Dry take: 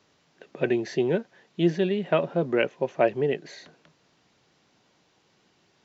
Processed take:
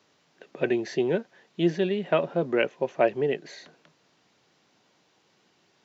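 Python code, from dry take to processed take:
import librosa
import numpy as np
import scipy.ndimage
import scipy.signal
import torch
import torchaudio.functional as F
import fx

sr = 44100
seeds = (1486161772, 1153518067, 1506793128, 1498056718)

y = fx.highpass(x, sr, hz=160.0, slope=6)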